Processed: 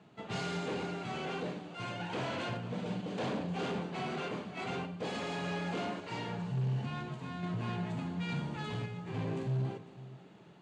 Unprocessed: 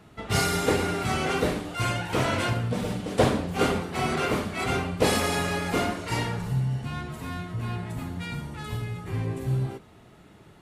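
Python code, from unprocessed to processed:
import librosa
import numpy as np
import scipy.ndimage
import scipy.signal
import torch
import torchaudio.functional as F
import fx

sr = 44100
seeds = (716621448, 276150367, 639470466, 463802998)

p1 = fx.cvsd(x, sr, bps=64000)
p2 = fx.low_shelf(p1, sr, hz=180.0, db=-10.0)
p3 = fx.rider(p2, sr, range_db=4, speed_s=2.0)
p4 = fx.tremolo_random(p3, sr, seeds[0], hz=3.5, depth_pct=55)
p5 = p4 + fx.echo_single(p4, sr, ms=501, db=-18.5, dry=0)
p6 = np.clip(10.0 ** (30.5 / 20.0) * p5, -1.0, 1.0) / 10.0 ** (30.5 / 20.0)
p7 = fx.cabinet(p6, sr, low_hz=120.0, low_slope=12, high_hz=5900.0, hz=(130.0, 180.0, 1300.0, 2000.0, 3800.0, 5400.0), db=(5, 8, -5, -5, -3, -10))
y = F.gain(torch.from_numpy(p7), -2.5).numpy()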